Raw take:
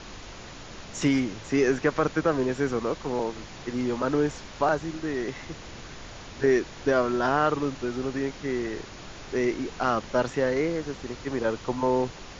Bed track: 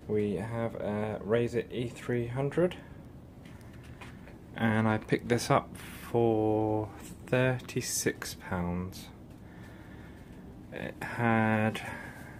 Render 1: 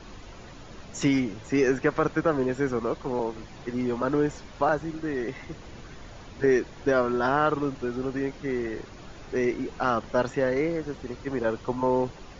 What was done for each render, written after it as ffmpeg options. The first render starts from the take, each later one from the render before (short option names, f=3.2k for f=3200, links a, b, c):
-af "afftdn=nr=8:nf=-43"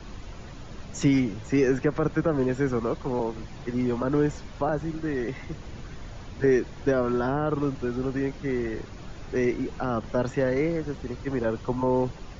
-filter_complex "[0:a]acrossover=split=200|630[a][b][c];[a]acontrast=47[d];[c]alimiter=level_in=1dB:limit=-24dB:level=0:latency=1:release=89,volume=-1dB[e];[d][b][e]amix=inputs=3:normalize=0"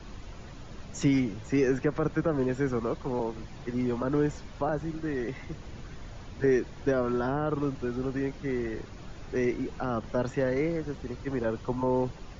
-af "volume=-3dB"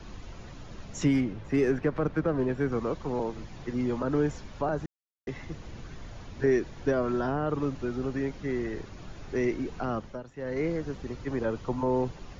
-filter_complex "[0:a]asettb=1/sr,asplit=3[a][b][c];[a]atrim=end=1.064[d];[b]atrim=start=1.06:end=2.72,asetpts=PTS-STARTPTS,afade=t=in:d=0.004:c=qsin,afade=t=out:st=1.656:d=0.004:c=qsin,adynamicsmooth=sensitivity=6.5:basefreq=3.4k[e];[c]atrim=start=2.716[f];[d][e]acrossfade=d=0.004:c1=hsin:c2=qsin[g];[g][f]acrossfade=d=0.004:c1=qsin:c2=hsin,asplit=5[h][i][j][k][l];[h]atrim=end=4.86,asetpts=PTS-STARTPTS,afade=t=out:st=4.856:d=0.004:c=hsin[m];[i]atrim=start=4.86:end=5.27,asetpts=PTS-STARTPTS,volume=0[n];[j]atrim=start=5.27:end=10.23,asetpts=PTS-STARTPTS,afade=t=in:d=0.004:c=hsin,afade=t=out:st=4.64:d=0.32:silence=0.16788[o];[k]atrim=start=10.23:end=10.35,asetpts=PTS-STARTPTS,volume=-15.5dB[p];[l]atrim=start=10.35,asetpts=PTS-STARTPTS,afade=t=in:d=0.32:silence=0.16788[q];[m][n][o][p][q]concat=n=5:v=0:a=1"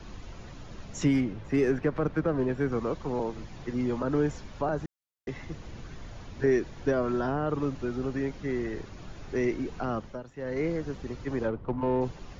-filter_complex "[0:a]asplit=3[a][b][c];[a]afade=t=out:st=11.47:d=0.02[d];[b]adynamicsmooth=sensitivity=2:basefreq=1k,afade=t=in:st=11.47:d=0.02,afade=t=out:st=12:d=0.02[e];[c]afade=t=in:st=12:d=0.02[f];[d][e][f]amix=inputs=3:normalize=0"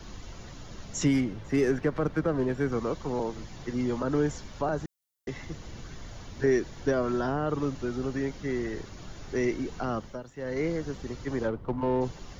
-af "highshelf=f=5k:g=10,bandreject=f=2.5k:w=17"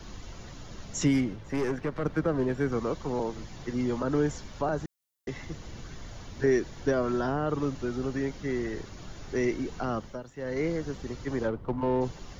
-filter_complex "[0:a]asettb=1/sr,asplit=3[a][b][c];[a]atrim=end=1.354[d];[b]atrim=start=1.35:end=2.06,asetpts=PTS-STARTPTS,afade=t=in:d=0.004:c=qsin,afade=t=out:st=0.706:d=0.004:c=qsin,aeval=exprs='(tanh(15.8*val(0)+0.5)-tanh(0.5))/15.8':c=same[e];[c]atrim=start=2.056[f];[d][e]acrossfade=d=0.004:c1=hsin:c2=qsin[g];[g][f]acrossfade=d=0.004:c1=qsin:c2=hsin"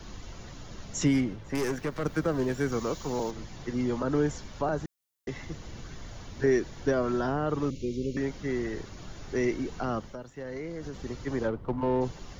-filter_complex "[0:a]asettb=1/sr,asplit=3[a][b][c];[a]atrim=end=1.554[d];[b]atrim=start=1.55:end=3.31,asetpts=PTS-STARTPTS,afade=t=in:d=0.004:c=qsin,afade=t=out:st=1.756:d=0.004:c=qsin,aemphasis=mode=production:type=75fm[e];[c]atrim=start=3.306[f];[d][e]acrossfade=d=0.004:c1=hsin:c2=qsin[g];[g][f]acrossfade=d=0.004:c1=qsin:c2=hsin,asettb=1/sr,asplit=3[h][i][j];[h]atrim=end=7.704[k];[i]atrim=start=7.7:end=8.17,asetpts=PTS-STARTPTS,afade=t=in:d=0.004:c=qsin,afade=t=out:st=0.466:d=0.004:c=qsin,asuperstop=centerf=1100:order=20:qfactor=0.7[l];[j]atrim=start=8.166[m];[k][l]acrossfade=d=0.004:c1=hsin:c2=qsin[n];[n][m]acrossfade=d=0.004:c1=qsin:c2=hsin,asettb=1/sr,asplit=3[o][p][q];[o]atrim=end=10.084[r];[p]atrim=start=10.08:end=11,asetpts=PTS-STARTPTS,afade=t=in:d=0.004:c=qsin,afade=t=out:st=0.916:d=0.004:c=qsin,acompressor=threshold=-33dB:ratio=6:attack=3.2:release=140:knee=1:detection=peak[s];[q]atrim=start=10.996[t];[r][s]acrossfade=d=0.004:c1=hsin:c2=qsin[u];[u][t]acrossfade=d=0.004:c1=qsin:c2=hsin"